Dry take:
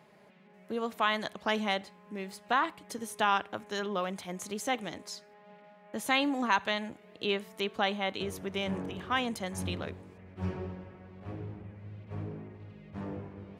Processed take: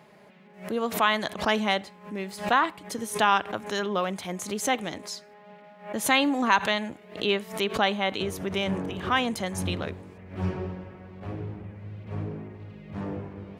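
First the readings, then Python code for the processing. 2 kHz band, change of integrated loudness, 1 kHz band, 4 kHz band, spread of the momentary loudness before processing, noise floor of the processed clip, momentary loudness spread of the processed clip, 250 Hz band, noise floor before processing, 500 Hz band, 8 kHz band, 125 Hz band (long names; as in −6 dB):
+5.5 dB, +6.0 dB, +5.5 dB, +5.5 dB, 16 LU, −52 dBFS, 17 LU, +6.0 dB, −58 dBFS, +6.0 dB, +8.5 dB, +6.0 dB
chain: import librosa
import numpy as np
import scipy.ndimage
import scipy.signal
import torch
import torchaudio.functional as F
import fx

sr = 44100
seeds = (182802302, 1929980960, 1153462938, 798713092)

y = fx.pre_swell(x, sr, db_per_s=140.0)
y = F.gain(torch.from_numpy(y), 5.5).numpy()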